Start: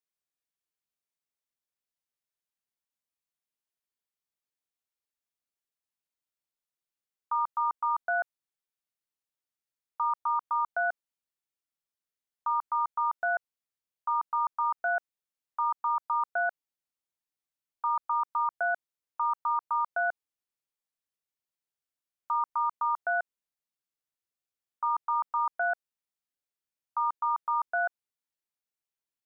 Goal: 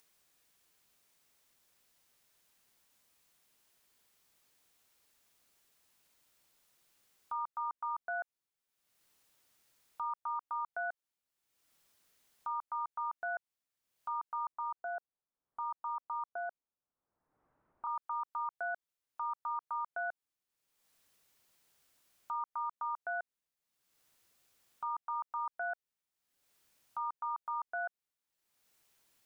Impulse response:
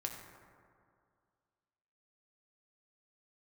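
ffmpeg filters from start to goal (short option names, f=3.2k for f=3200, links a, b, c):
-filter_complex "[0:a]alimiter=level_in=7dB:limit=-24dB:level=0:latency=1:release=156,volume=-7dB,asettb=1/sr,asplit=3[a][b][c];[a]atrim=end=14.524[d];[b]atrim=start=14.52:end=17.87,asetpts=PTS-STARTPTS,afade=t=in:d=0.004:c=qsin,afade=t=out:st=3.346:d=0.004:c=qsin,lowpass=f=1.3k:w=0.5412,lowpass=f=1.3k:w=1.3066[e];[c]atrim=start=17.866[f];[d][e]acrossfade=d=0.004:c1=hsin:c2=qsin[g];[g][f]acrossfade=d=0.004:c1=qsin:c2=hsin,acompressor=mode=upward:threshold=-57dB:ratio=2.5,volume=1dB"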